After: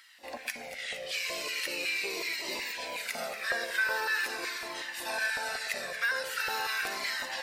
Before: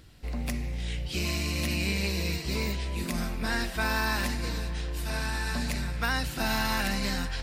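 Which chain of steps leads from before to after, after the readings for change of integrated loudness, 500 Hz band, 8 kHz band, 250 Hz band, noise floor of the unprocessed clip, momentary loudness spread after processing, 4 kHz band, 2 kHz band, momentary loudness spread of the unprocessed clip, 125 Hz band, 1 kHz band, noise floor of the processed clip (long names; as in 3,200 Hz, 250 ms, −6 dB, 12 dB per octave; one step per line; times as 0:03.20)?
−2.0 dB, −2.0 dB, −1.5 dB, −17.5 dB, −37 dBFS, 8 LU, −1.0 dB, +2.0 dB, 6 LU, below −30 dB, −3.0 dB, −44 dBFS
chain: low-shelf EQ 140 Hz −8 dB
downward compressor, threshold −33 dBFS, peak gain reduction 8 dB
auto-filter high-pass square 2.7 Hz 500–1,700 Hz
on a send: delay that swaps between a low-pass and a high-pass 116 ms, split 1,900 Hz, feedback 82%, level −10.5 dB
on the sum: flanger whose copies keep moving one way falling 0.42 Hz
level +6.5 dB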